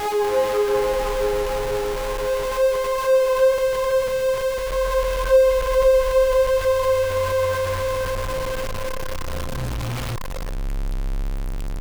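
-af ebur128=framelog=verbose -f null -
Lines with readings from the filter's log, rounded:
Integrated loudness:
  I:         -21.5 LUFS
  Threshold: -31.6 LUFS
Loudness range:
  LRA:         9.4 LU
  Threshold: -41.1 LUFS
  LRA low:   -28.4 LUFS
  LRA high:  -19.0 LUFS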